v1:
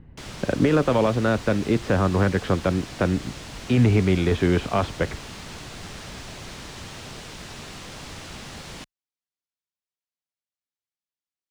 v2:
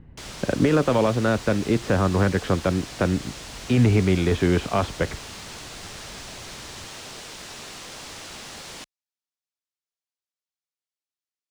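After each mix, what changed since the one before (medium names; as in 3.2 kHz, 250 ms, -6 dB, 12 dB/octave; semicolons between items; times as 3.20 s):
background: add tone controls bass -9 dB, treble +4 dB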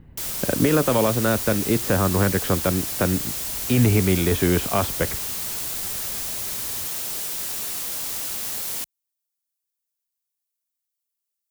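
master: remove distance through air 110 m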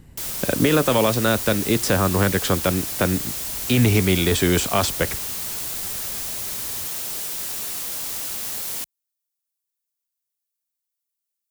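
speech: remove distance through air 400 m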